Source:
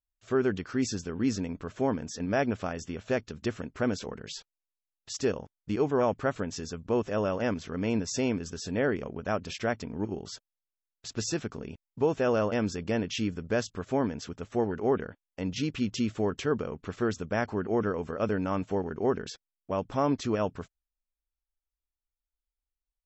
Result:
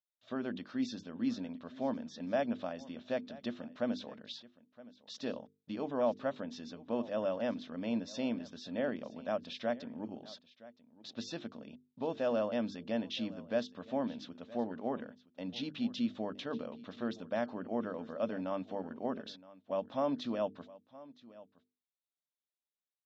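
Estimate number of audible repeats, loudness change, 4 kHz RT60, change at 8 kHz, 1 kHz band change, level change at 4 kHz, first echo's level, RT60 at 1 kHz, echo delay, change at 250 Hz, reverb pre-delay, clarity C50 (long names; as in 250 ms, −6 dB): 1, −7.0 dB, no reverb audible, can't be measured, −7.5 dB, −5.0 dB, −19.5 dB, no reverb audible, 968 ms, −6.5 dB, no reverb audible, no reverb audible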